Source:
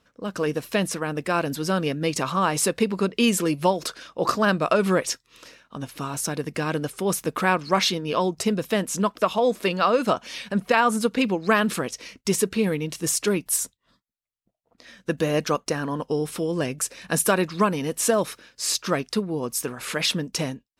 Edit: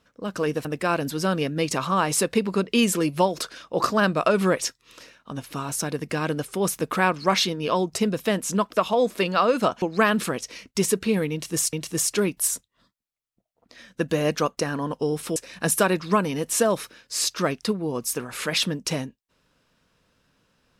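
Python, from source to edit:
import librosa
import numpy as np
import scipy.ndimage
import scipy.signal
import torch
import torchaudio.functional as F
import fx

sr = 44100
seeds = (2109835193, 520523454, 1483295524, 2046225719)

y = fx.edit(x, sr, fx.cut(start_s=0.65, length_s=0.45),
    fx.cut(start_s=10.27, length_s=1.05),
    fx.repeat(start_s=12.82, length_s=0.41, count=2),
    fx.cut(start_s=16.45, length_s=0.39), tone=tone)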